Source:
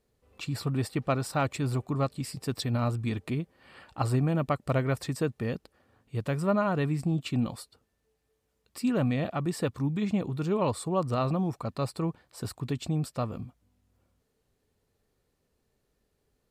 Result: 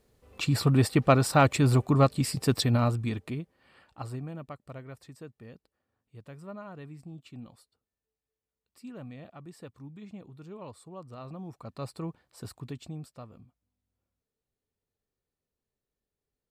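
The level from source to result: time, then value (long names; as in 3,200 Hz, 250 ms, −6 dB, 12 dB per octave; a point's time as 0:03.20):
0:02.53 +7 dB
0:03.36 −4 dB
0:04.75 −16.5 dB
0:11.14 −16.5 dB
0:11.88 −6 dB
0:12.58 −6 dB
0:13.26 −15 dB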